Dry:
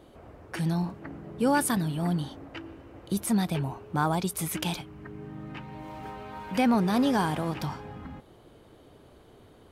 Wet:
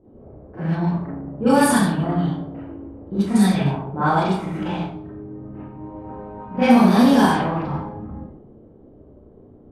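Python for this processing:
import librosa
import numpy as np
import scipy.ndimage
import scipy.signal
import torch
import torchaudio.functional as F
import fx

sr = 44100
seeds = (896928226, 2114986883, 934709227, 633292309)

y = fx.rev_schroeder(x, sr, rt60_s=0.8, comb_ms=29, drr_db=-10.0)
y = fx.env_lowpass(y, sr, base_hz=410.0, full_db=-9.0)
y = F.gain(torch.from_numpy(y), -1.0).numpy()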